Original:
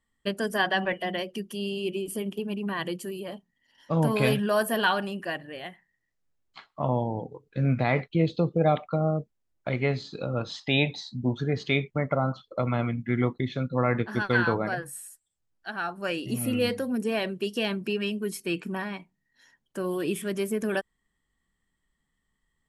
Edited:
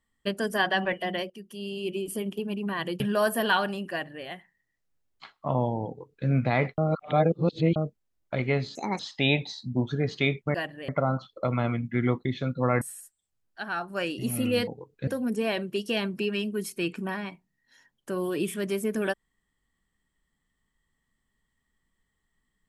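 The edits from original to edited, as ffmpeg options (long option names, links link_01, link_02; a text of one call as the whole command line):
ffmpeg -i in.wav -filter_complex "[0:a]asplit=12[link_01][link_02][link_03][link_04][link_05][link_06][link_07][link_08][link_09][link_10][link_11][link_12];[link_01]atrim=end=1.3,asetpts=PTS-STARTPTS,afade=type=out:start_time=1.296:duration=0.004:curve=hsin:silence=0.223872[link_13];[link_02]atrim=start=1.3:end=3.002,asetpts=PTS-STARTPTS,afade=type=in:duration=0.71:silence=0.223872[link_14];[link_03]atrim=start=4.338:end=8.122[link_15];[link_04]atrim=start=8.118:end=9.102,asetpts=PTS-STARTPTS,areverse[link_16];[link_05]atrim=start=9.098:end=10.094[link_17];[link_06]atrim=start=10.09:end=10.48,asetpts=PTS-STARTPTS,asetrate=70560,aresample=44100,atrim=end_sample=10749,asetpts=PTS-STARTPTS[link_18];[link_07]atrim=start=10.476:end=12.032[link_19];[link_08]atrim=start=5.248:end=5.592[link_20];[link_09]atrim=start=12.028:end=13.962[link_21];[link_10]atrim=start=14.888:end=16.752[link_22];[link_11]atrim=start=7.208:end=7.612[link_23];[link_12]atrim=start=16.748[link_24];[link_13][link_14]concat=n=2:v=0:a=1[link_25];[link_25][link_15]acrossfade=duration=0.004:curve1=hsin:curve2=hsin[link_26];[link_26][link_16]acrossfade=duration=0.004:curve1=hsin:curve2=hsin[link_27];[link_27][link_17]acrossfade=duration=0.004:curve1=hsin:curve2=hsin[link_28];[link_28][link_18]acrossfade=duration=0.004:curve1=hsin:curve2=hsin[link_29];[link_29][link_19]acrossfade=duration=0.004:curve1=hsin:curve2=hsin[link_30];[link_30][link_20]acrossfade=duration=0.004:curve1=hsin:curve2=hsin[link_31];[link_31][link_21]acrossfade=duration=0.004:curve1=hsin:curve2=hsin[link_32];[link_32][link_22]acrossfade=duration=0.004:curve1=hsin:curve2=hsin[link_33];[link_33][link_23]acrossfade=duration=0.004:curve1=hsin:curve2=hsin[link_34];[link_34][link_24]acrossfade=duration=0.004:curve1=hsin:curve2=hsin" out.wav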